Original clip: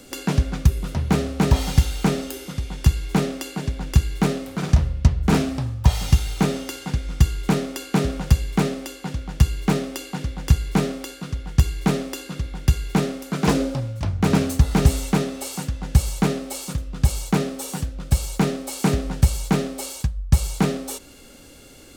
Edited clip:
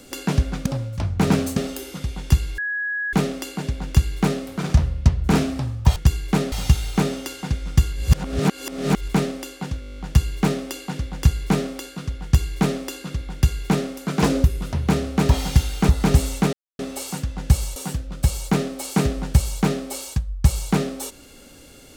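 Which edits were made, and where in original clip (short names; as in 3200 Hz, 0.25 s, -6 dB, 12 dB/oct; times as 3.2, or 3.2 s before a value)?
0.66–2.11 swap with 13.69–14.6
3.12 add tone 1670 Hz -22.5 dBFS 0.55 s
7.36–8.51 reverse
9.23 stutter 0.02 s, 10 plays
11.49–12.05 copy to 5.95
15.24 insert silence 0.26 s
16.21–17.64 cut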